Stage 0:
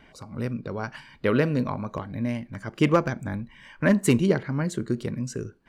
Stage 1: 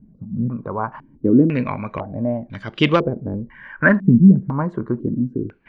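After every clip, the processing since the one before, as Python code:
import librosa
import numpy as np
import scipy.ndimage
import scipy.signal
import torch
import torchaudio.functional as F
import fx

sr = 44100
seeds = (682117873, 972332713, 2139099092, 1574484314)

y = fx.filter_held_lowpass(x, sr, hz=2.0, low_hz=200.0, high_hz=3500.0)
y = F.gain(torch.from_numpy(y), 3.5).numpy()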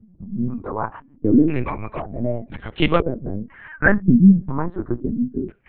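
y = fx.lpc_vocoder(x, sr, seeds[0], excitation='pitch_kept', order=10)
y = F.gain(torch.from_numpy(y), -1.0).numpy()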